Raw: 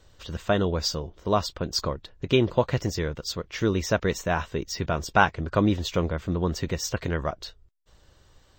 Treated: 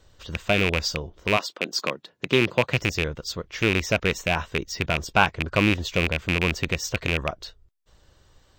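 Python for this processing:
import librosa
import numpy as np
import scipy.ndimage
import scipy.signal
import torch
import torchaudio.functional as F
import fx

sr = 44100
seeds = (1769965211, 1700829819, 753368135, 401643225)

y = fx.rattle_buzz(x, sr, strikes_db=-24.0, level_db=-10.0)
y = fx.highpass(y, sr, hz=fx.line((1.36, 280.0), (2.8, 89.0)), slope=24, at=(1.36, 2.8), fade=0.02)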